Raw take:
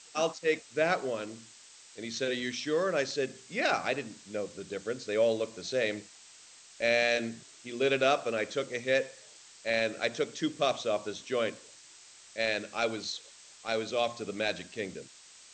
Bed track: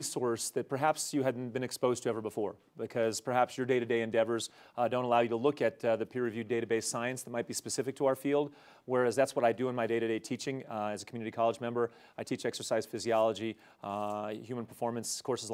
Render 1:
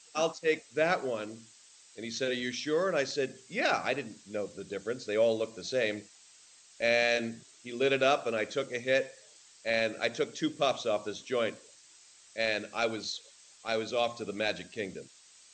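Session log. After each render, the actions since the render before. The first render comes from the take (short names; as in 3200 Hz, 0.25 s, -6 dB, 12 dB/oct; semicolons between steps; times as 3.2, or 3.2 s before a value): denoiser 6 dB, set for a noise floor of -54 dBFS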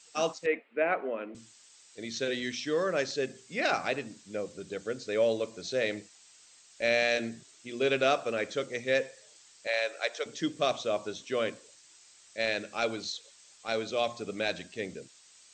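0.46–1.35 elliptic band-pass 220–2500 Hz; 9.67–10.26 HPF 500 Hz 24 dB/oct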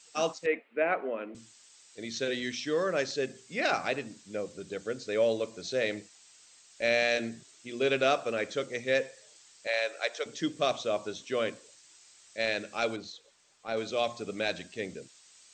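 12.96–13.77 high shelf 2400 Hz -11.5 dB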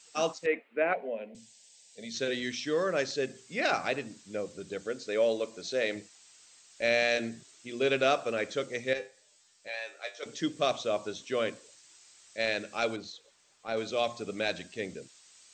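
0.93–2.15 fixed phaser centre 330 Hz, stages 6; 4.87–5.96 bell 110 Hz -9 dB 1.1 oct; 8.93–10.23 resonator 100 Hz, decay 0.22 s, mix 90%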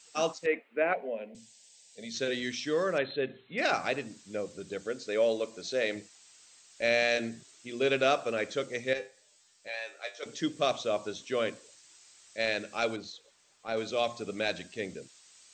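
2.98–3.58 brick-wall FIR low-pass 4200 Hz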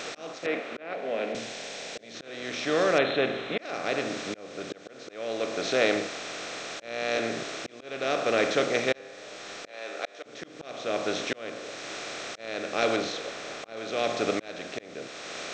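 per-bin compression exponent 0.4; auto swell 0.607 s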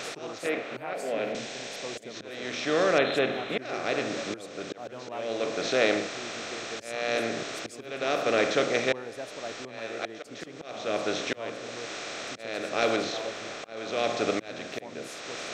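add bed track -11 dB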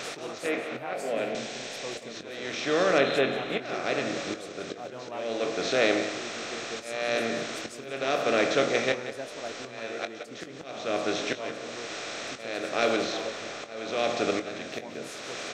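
doubler 22 ms -10.5 dB; echo 0.18 s -12 dB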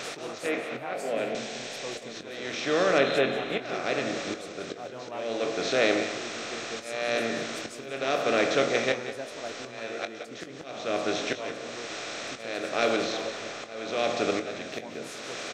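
echo 0.198 s -16 dB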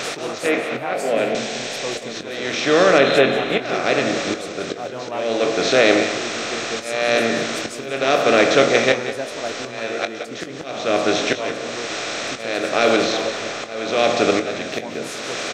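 gain +10 dB; limiter -2 dBFS, peak gain reduction 3 dB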